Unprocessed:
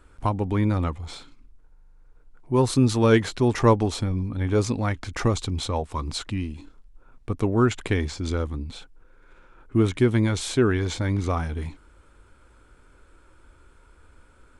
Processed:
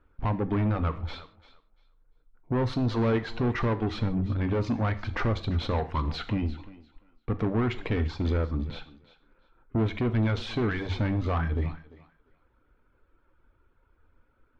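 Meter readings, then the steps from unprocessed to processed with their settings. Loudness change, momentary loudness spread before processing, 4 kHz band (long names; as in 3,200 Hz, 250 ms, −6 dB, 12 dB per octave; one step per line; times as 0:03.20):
−4.5 dB, 14 LU, −6.0 dB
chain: noise gate −41 dBFS, range −16 dB
hum removal 47.67 Hz, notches 3
reverb reduction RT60 0.73 s
high-shelf EQ 7,700 Hz −11 dB
in parallel at −2 dB: downward compressor, threshold −29 dBFS, peak gain reduction 15.5 dB
on the sum: brickwall limiter −14 dBFS, peak gain reduction 8.5 dB
soft clipping −24 dBFS, distortion −10 dB
high-frequency loss of the air 280 metres
on a send: feedback echo with a high-pass in the loop 345 ms, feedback 19%, high-pass 260 Hz, level −17 dB
on the sum: reverb whose tail is shaped and stops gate 180 ms falling, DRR 10 dB
level +2 dB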